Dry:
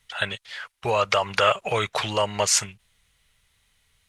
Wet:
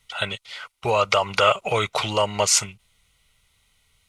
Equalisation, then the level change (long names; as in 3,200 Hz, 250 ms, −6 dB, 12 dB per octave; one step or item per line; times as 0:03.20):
Butterworth band-reject 1,700 Hz, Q 5.3
+2.0 dB